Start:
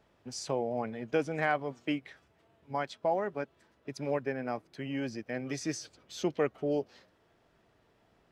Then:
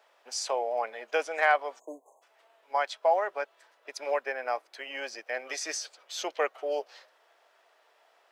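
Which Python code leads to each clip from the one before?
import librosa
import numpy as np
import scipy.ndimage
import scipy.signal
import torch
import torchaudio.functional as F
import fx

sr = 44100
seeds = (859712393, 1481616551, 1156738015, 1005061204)

y = scipy.signal.sosfilt(scipy.signal.butter(4, 570.0, 'highpass', fs=sr, output='sos'), x)
y = fx.spec_erase(y, sr, start_s=1.79, length_s=0.43, low_hz=1100.0, high_hz=6200.0)
y = F.gain(torch.from_numpy(y), 7.0).numpy()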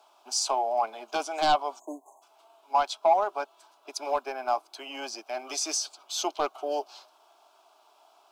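y = fx.fold_sine(x, sr, drive_db=7, ceiling_db=-10.0)
y = fx.fixed_phaser(y, sr, hz=500.0, stages=6)
y = F.gain(torch.from_numpy(y), -3.5).numpy()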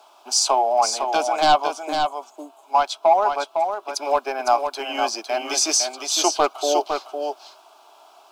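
y = fx.rider(x, sr, range_db=3, speed_s=2.0)
y = y + 10.0 ** (-6.0 / 20.0) * np.pad(y, (int(507 * sr / 1000.0), 0))[:len(y)]
y = F.gain(torch.from_numpy(y), 8.0).numpy()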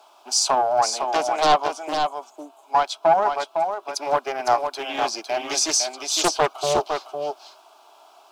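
y = fx.doppler_dist(x, sr, depth_ms=0.3)
y = F.gain(torch.from_numpy(y), -1.0).numpy()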